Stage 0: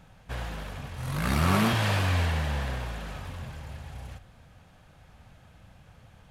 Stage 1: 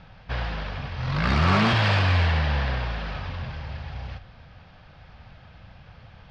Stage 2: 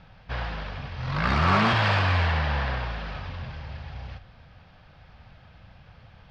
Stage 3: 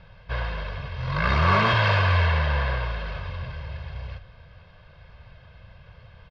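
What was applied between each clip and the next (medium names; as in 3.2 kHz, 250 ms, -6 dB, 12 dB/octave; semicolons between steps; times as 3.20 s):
elliptic low-pass 5.1 kHz, stop band 50 dB; peaking EQ 300 Hz -4 dB 1.4 oct; saturation -20 dBFS, distortion -18 dB; trim +7.5 dB
dynamic bell 1.1 kHz, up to +5 dB, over -36 dBFS, Q 0.75; trim -3 dB
low-pass 5.3 kHz 12 dB/octave; comb 1.9 ms, depth 62%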